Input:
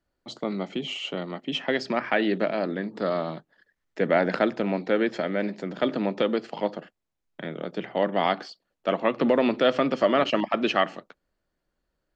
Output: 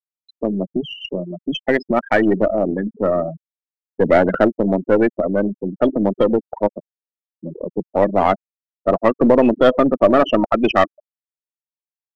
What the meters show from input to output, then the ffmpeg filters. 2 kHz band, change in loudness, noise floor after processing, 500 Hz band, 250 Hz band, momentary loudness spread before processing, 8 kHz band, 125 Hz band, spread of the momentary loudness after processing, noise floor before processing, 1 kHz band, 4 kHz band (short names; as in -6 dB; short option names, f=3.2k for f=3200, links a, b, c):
+4.0 dB, +8.0 dB, under -85 dBFS, +8.5 dB, +9.0 dB, 12 LU, n/a, +9.0 dB, 12 LU, -80 dBFS, +7.5 dB, 0.0 dB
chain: -filter_complex "[0:a]afftfilt=real='re*gte(hypot(re,im),0.112)':imag='im*gte(hypot(re,im),0.112)':win_size=1024:overlap=0.75,acrossover=split=3000[a][b];[b]acompressor=threshold=-52dB:ratio=4:attack=1:release=60[c];[a][c]amix=inputs=2:normalize=0,asplit=2[d][e];[e]asoftclip=type=hard:threshold=-19.5dB,volume=-8.5dB[f];[d][f]amix=inputs=2:normalize=0,aeval=exprs='0.398*(cos(1*acos(clip(val(0)/0.398,-1,1)))-cos(1*PI/2))+0.0316*(cos(4*acos(clip(val(0)/0.398,-1,1)))-cos(4*PI/2))':c=same,volume=6.5dB"